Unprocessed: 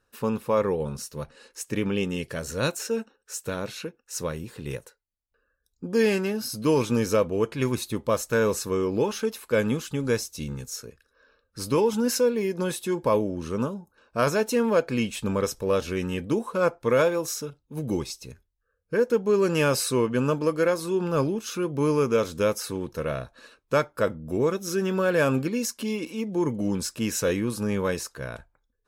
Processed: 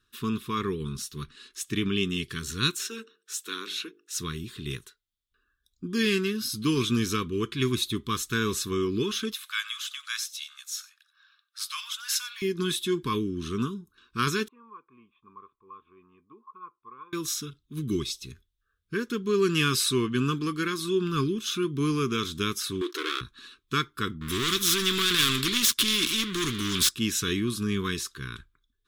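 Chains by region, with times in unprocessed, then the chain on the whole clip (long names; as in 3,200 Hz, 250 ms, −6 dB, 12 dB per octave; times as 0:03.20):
0:02.87–0:04.17: high-pass filter 290 Hz 24 dB per octave + mains-hum notches 50/100/150/200/250/300/350/400/450 Hz
0:09.34–0:12.42: Butterworth high-pass 1,100 Hz 48 dB per octave + single-tap delay 93 ms −19 dB
0:14.48–0:17.13: formant resonators in series a + low-shelf EQ 180 Hz −10.5 dB
0:22.81–0:23.21: high-shelf EQ 8,900 Hz −9 dB + leveller curve on the samples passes 3 + linear-phase brick-wall high-pass 280 Hz
0:24.21–0:26.89: leveller curve on the samples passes 3 + every bin compressed towards the loudest bin 2 to 1
whole clip: elliptic band-stop filter 390–1,100 Hz, stop band 50 dB; parametric band 3,500 Hz +13.5 dB 0.41 octaves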